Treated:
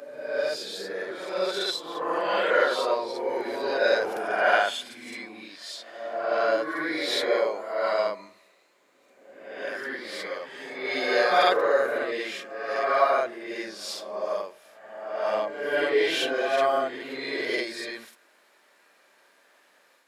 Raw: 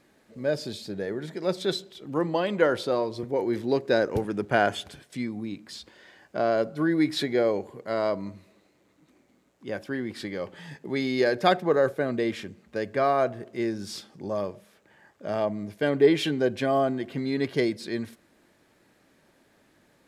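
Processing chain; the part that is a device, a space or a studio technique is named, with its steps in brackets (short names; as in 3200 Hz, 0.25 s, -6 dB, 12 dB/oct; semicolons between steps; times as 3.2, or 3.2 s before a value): ghost voice (reverse; reverb RT60 1.1 s, pre-delay 36 ms, DRR -5 dB; reverse; HPF 730 Hz 12 dB/oct)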